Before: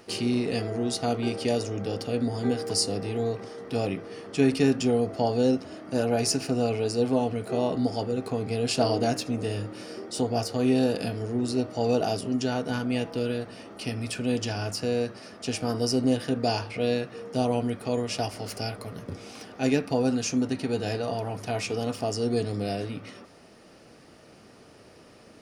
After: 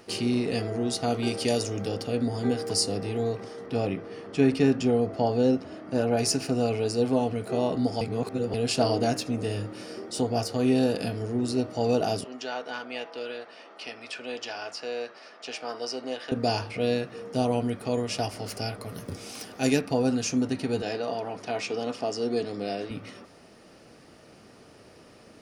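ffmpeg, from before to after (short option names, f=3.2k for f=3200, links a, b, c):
-filter_complex "[0:a]asettb=1/sr,asplit=3[a][b][c];[a]atrim=end=1.134[d];[b]atrim=start=1.13:end=1.89,asetpts=PTS-STARTPTS,afade=t=in:d=0.004:c=qsin,afade=t=out:st=0.756:d=0.004:c=qsin,highshelf=f=3.9k:g=8[e];[c]atrim=start=1.886[f];[d][e]acrossfade=d=0.004:c1=hsin:c2=qsin[g];[g][f]acrossfade=d=0.004:c1=qsin:c2=hsin,asettb=1/sr,asplit=3[h][i][j];[h]atrim=end=3.664[k];[i]atrim=start=3.66:end=6.17,asetpts=PTS-STARTPTS,afade=t=in:d=0.004:c=qsin,afade=t=out:st=2.506:d=0.004:c=qsin,aemphasis=mode=reproduction:type=cd[l];[j]atrim=start=6.166[m];[k][l]acrossfade=d=0.004:c1=hsin:c2=qsin[n];[n][m]acrossfade=d=0.004:c1=qsin:c2=hsin,asettb=1/sr,asplit=3[o][p][q];[o]atrim=end=12.244[r];[p]atrim=start=12.24:end=16.32,asetpts=PTS-STARTPTS,afade=t=in:d=0.004:c=qsin,afade=t=out:st=4.076:d=0.004:c=qsin,highpass=610,lowpass=4.5k[s];[q]atrim=start=16.316[t];[r][s]acrossfade=d=0.004:c1=hsin:c2=qsin[u];[u][t]acrossfade=d=0.004:c1=qsin:c2=hsin,asettb=1/sr,asplit=3[v][w][x];[v]atrim=end=18.894[y];[w]atrim=start=18.89:end=19.81,asetpts=PTS-STARTPTS,afade=t=in:d=0.004:c=qsin,afade=t=out:st=0.916:d=0.004:c=qsin,aemphasis=mode=production:type=50kf[z];[x]atrim=start=19.806[aa];[y][z]acrossfade=d=0.004:c1=hsin:c2=qsin[ab];[ab][aa]acrossfade=d=0.004:c1=qsin:c2=hsin,asettb=1/sr,asplit=3[ac][ad][ae];[ac]atrim=end=20.824[af];[ad]atrim=start=20.82:end=22.91,asetpts=PTS-STARTPTS,afade=t=in:d=0.004:c=qsin,afade=t=out:st=2.086:d=0.004:c=qsin,highpass=230,lowpass=6.2k[ag];[ae]atrim=start=22.906[ah];[af][ag]acrossfade=d=0.004:c1=hsin:c2=qsin[ai];[ai][ah]acrossfade=d=0.004:c1=qsin:c2=hsin,asplit=3[aj][ak][al];[aj]atrim=end=8.012[am];[ak]atrim=start=8.008:end=8.542,asetpts=PTS-STARTPTS,areverse[an];[al]atrim=start=8.538[ao];[am][an]acrossfade=d=0.004:c1=hsin:c2=hsin[ap];[ap][ao]acrossfade=d=0.004:c1=hsin:c2=hsin"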